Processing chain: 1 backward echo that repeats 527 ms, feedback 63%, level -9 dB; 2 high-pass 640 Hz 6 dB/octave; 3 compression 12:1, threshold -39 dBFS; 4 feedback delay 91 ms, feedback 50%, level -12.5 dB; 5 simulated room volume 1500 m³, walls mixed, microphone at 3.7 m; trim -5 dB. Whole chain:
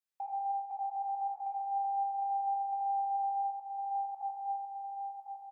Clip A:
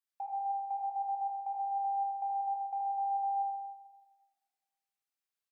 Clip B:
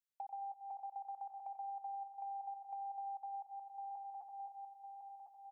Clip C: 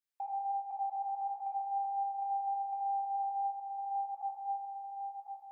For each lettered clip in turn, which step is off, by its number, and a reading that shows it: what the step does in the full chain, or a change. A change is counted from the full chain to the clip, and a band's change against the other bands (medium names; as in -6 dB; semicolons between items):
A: 1, momentary loudness spread change -2 LU; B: 5, echo-to-direct 6.0 dB to -11.5 dB; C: 4, loudness change -1.5 LU